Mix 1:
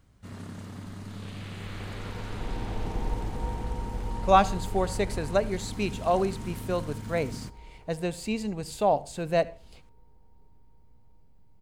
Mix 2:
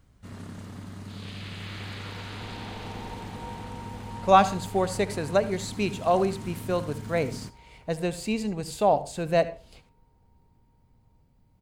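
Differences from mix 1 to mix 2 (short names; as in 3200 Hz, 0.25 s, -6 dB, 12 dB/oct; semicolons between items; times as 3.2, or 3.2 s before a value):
speech: send +7.0 dB; second sound: add tilt +3.5 dB/oct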